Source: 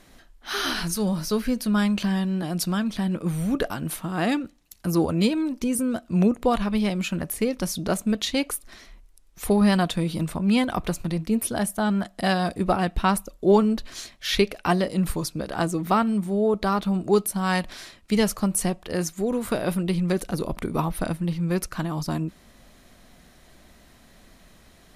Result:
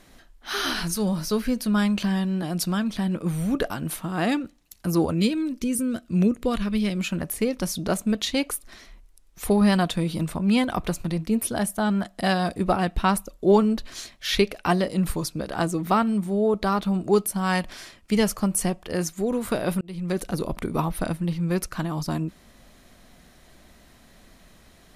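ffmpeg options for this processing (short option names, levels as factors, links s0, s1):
-filter_complex "[0:a]asettb=1/sr,asplit=3[s0][s1][s2];[s0]atrim=end=5.144[s3];[s1]atrim=start=5.14:end=6.97,asetpts=PTS-STARTPTS,afade=t=in:d=0.004:c=qsin,afade=t=out:st=1.826:d=0.004:c=qsin,equalizer=f=820:w=1.6:g=-11.5[s4];[s2]atrim=start=6.966[s5];[s3][s4]acrossfade=d=0.004:c1=hsin:c2=qsin[s6];[s6][s5]acrossfade=d=0.004:c1=qsin:c2=hsin,asettb=1/sr,asplit=3[s7][s8][s9];[s7]atrim=end=17.104[s10];[s8]atrim=start=17.1:end=19.03,asetpts=PTS-STARTPTS,afade=t=in:d=0.004:c=qsin,afade=t=out:st=1.926:d=0.004:c=qsin,bandreject=f=3900:w=12[s11];[s9]atrim=start=19.026[s12];[s10][s11]acrossfade=d=0.004:c1=hsin:c2=qsin[s13];[s13][s12]acrossfade=d=0.004:c1=qsin:c2=hsin,asplit=2[s14][s15];[s14]atrim=end=19.81,asetpts=PTS-STARTPTS,afade=t=out:st=19.806:d=0.004:c=hsin[s16];[s15]atrim=start=19.81,asetpts=PTS-STARTPTS,afade=t=in:d=0.42[s17];[s16][s17]concat=n=2:v=0:a=1"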